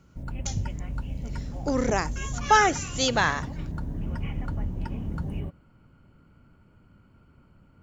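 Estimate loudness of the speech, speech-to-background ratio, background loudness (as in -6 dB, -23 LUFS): -24.5 LUFS, 10.0 dB, -34.5 LUFS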